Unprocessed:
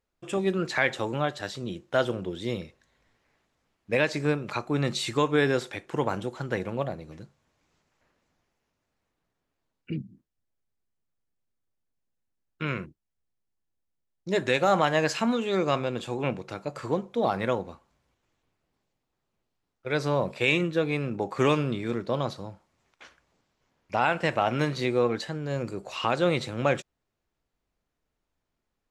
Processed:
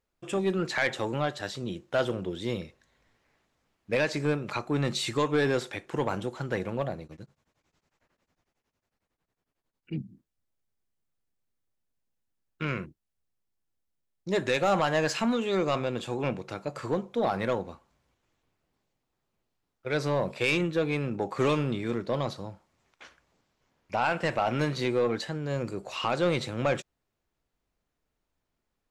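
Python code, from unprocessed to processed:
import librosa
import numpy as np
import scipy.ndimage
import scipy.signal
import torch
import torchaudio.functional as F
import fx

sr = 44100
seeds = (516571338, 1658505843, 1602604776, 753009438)

y = 10.0 ** (-17.0 / 20.0) * np.tanh(x / 10.0 ** (-17.0 / 20.0))
y = fx.tremolo_abs(y, sr, hz=11.0, at=(7.04, 9.95))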